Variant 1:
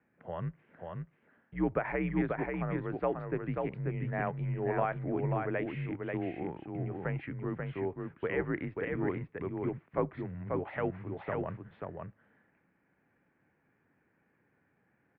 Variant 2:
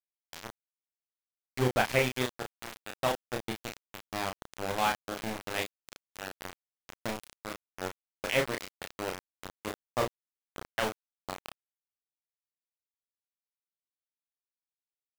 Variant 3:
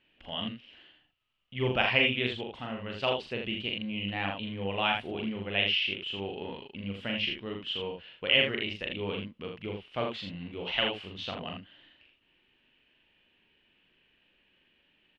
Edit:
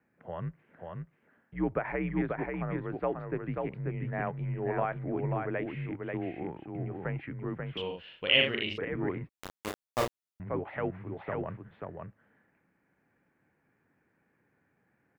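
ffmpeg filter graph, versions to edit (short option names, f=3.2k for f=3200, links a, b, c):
-filter_complex "[0:a]asplit=3[a][b][c];[a]atrim=end=7.772[d];[2:a]atrim=start=7.768:end=8.782[e];[b]atrim=start=8.778:end=9.292[f];[1:a]atrim=start=9.288:end=10.402[g];[c]atrim=start=10.398[h];[d][e]acrossfade=d=0.004:c1=hsin:c2=hsin[i];[i][f]acrossfade=d=0.004:c1=hsin:c2=hsin[j];[j][g]acrossfade=d=0.004:c1=hsin:c2=hsin[k];[k][h]acrossfade=d=0.004:c1=hsin:c2=hsin"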